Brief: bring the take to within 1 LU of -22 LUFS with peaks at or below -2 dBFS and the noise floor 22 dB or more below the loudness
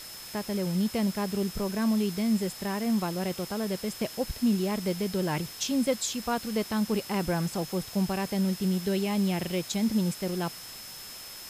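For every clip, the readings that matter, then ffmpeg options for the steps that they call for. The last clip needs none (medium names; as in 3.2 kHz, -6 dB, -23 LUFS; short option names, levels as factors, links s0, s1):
steady tone 5.2 kHz; tone level -45 dBFS; noise floor -43 dBFS; noise floor target -51 dBFS; loudness -29.0 LUFS; peak level -14.0 dBFS; loudness target -22.0 LUFS
-> -af "bandreject=f=5200:w=30"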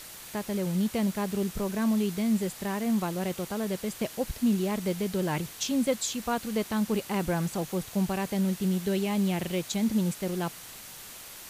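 steady tone not found; noise floor -45 dBFS; noise floor target -52 dBFS
-> -af "afftdn=nr=7:nf=-45"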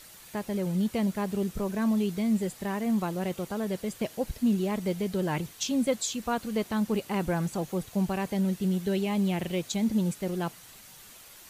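noise floor -50 dBFS; noise floor target -52 dBFS
-> -af "afftdn=nr=6:nf=-50"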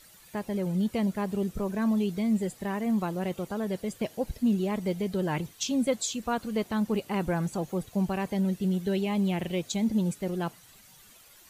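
noise floor -55 dBFS; loudness -29.5 LUFS; peak level -14.5 dBFS; loudness target -22.0 LUFS
-> -af "volume=2.37"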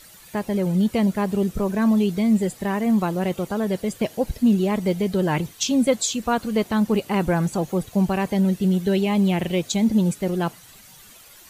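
loudness -22.0 LUFS; peak level -7.0 dBFS; noise floor -47 dBFS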